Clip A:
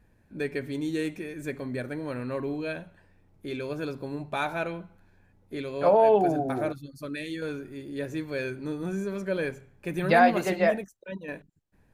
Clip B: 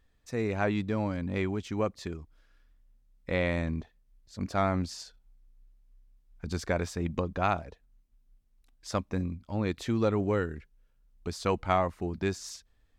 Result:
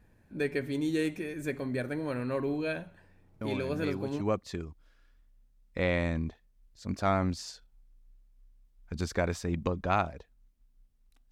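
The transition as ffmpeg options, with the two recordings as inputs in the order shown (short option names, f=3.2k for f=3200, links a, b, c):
-filter_complex "[1:a]asplit=2[a][b];[0:a]apad=whole_dur=11.31,atrim=end=11.31,atrim=end=4.212[c];[b]atrim=start=1.728:end=8.83[d];[a]atrim=start=0.93:end=1.73,asetpts=PTS-STARTPTS,volume=-6.5dB,afade=t=in:d=0.004:c=hsin,afade=t=out:st=0.796:d=0.004:c=hsin,adelay=150381S[e];[c][d]acrossfade=d=0.004:c1=hsin:c2=hsin[f];[f][e]amix=inputs=2:normalize=0"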